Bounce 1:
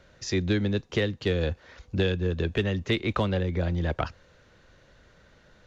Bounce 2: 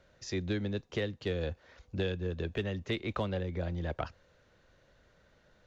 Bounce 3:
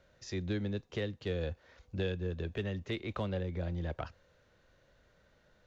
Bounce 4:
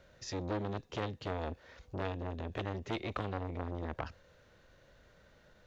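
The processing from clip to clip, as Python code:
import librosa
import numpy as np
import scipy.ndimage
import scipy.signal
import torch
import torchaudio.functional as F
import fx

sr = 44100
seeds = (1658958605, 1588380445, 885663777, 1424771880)

y1 = fx.peak_eq(x, sr, hz=630.0, db=3.0, octaves=0.89)
y1 = y1 * librosa.db_to_amplitude(-8.5)
y2 = fx.hpss(y1, sr, part='harmonic', gain_db=4)
y2 = y2 * librosa.db_to_amplitude(-4.5)
y3 = fx.transformer_sat(y2, sr, knee_hz=980.0)
y3 = y3 * librosa.db_to_amplitude(4.5)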